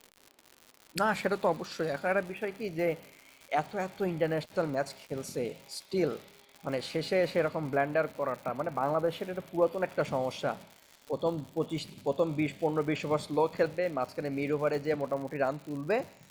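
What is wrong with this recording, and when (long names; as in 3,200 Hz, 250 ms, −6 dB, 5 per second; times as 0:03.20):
surface crackle 140 per second −39 dBFS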